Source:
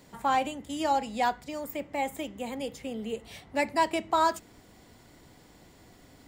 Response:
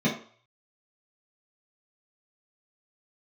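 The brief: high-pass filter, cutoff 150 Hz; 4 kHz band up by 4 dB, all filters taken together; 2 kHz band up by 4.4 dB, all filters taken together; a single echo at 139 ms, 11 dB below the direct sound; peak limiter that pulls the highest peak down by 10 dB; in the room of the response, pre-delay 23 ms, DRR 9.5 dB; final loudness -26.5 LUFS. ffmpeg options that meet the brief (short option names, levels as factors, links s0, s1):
-filter_complex "[0:a]highpass=150,equalizer=f=2000:t=o:g=4.5,equalizer=f=4000:t=o:g=3.5,alimiter=limit=0.0794:level=0:latency=1,aecho=1:1:139:0.282,asplit=2[s0][s1];[1:a]atrim=start_sample=2205,adelay=23[s2];[s1][s2]afir=irnorm=-1:irlink=0,volume=0.0841[s3];[s0][s3]amix=inputs=2:normalize=0,volume=1.88"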